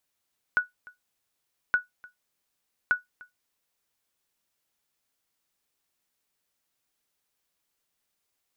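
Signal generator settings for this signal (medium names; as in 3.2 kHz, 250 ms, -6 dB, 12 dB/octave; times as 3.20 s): sonar ping 1.47 kHz, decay 0.15 s, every 1.17 s, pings 3, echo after 0.30 s, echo -24 dB -14 dBFS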